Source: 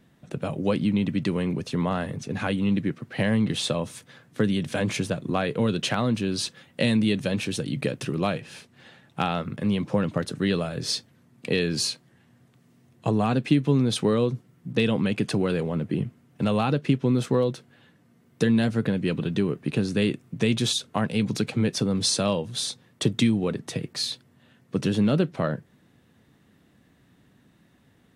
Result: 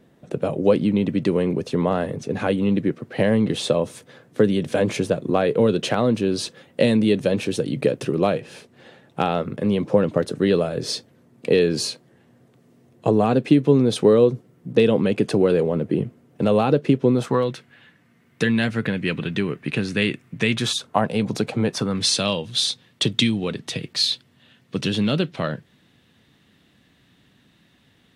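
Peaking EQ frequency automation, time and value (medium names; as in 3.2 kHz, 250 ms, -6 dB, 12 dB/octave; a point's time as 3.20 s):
peaking EQ +10 dB 1.5 oct
17.08 s 460 Hz
17.50 s 2.1 kHz
20.44 s 2.1 kHz
21.05 s 670 Hz
21.61 s 670 Hz
22.20 s 3.4 kHz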